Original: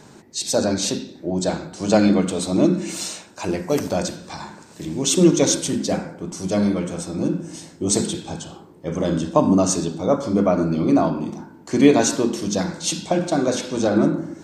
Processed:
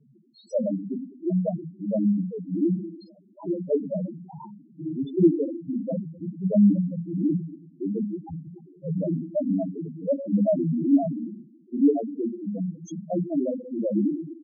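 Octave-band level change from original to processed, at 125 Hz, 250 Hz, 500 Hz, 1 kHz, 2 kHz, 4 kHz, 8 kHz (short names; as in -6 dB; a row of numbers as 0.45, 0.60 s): -4.0 dB, -4.0 dB, -7.0 dB, under -15 dB, under -40 dB, under -30 dB, under -30 dB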